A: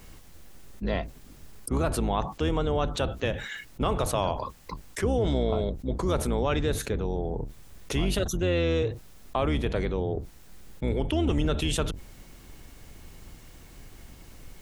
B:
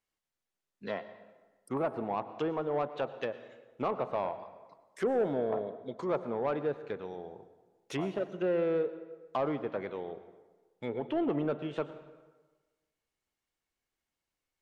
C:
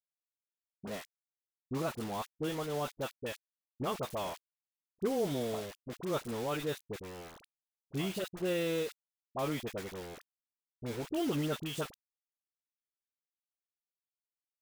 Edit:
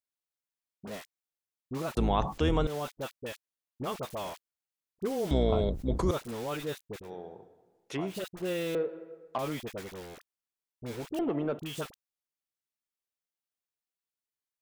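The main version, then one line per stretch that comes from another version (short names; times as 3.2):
C
1.97–2.67 from A
5.31–6.11 from A
7.06–8.11 from B, crossfade 0.10 s
8.75–9.38 from B
11.19–11.59 from B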